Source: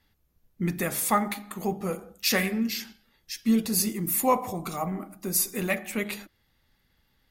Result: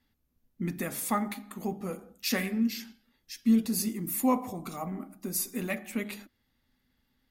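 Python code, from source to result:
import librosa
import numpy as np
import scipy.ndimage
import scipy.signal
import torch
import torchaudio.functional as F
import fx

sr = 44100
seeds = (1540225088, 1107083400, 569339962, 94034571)

y = fx.peak_eq(x, sr, hz=250.0, db=12.5, octaves=0.3)
y = F.gain(torch.from_numpy(y), -6.5).numpy()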